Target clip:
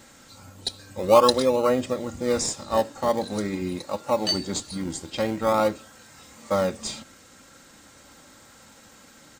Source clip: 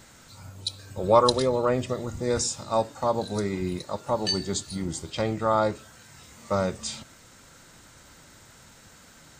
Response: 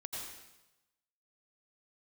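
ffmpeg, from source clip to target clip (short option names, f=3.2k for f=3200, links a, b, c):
-filter_complex "[0:a]highpass=f=140:p=1,aecho=1:1:3.7:0.45,asplit=2[a][b];[b]acrusher=samples=25:mix=1:aa=0.000001:lfo=1:lforange=25:lforate=0.44,volume=-11dB[c];[a][c]amix=inputs=2:normalize=0"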